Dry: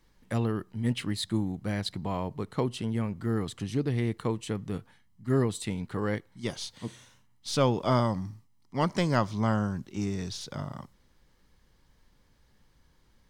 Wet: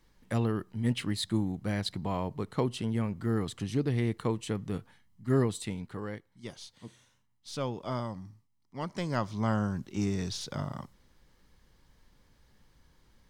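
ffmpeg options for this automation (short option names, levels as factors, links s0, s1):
-af "volume=3.16,afade=t=out:st=5.39:d=0.74:silence=0.354813,afade=t=in:st=8.87:d=1.12:silence=0.298538"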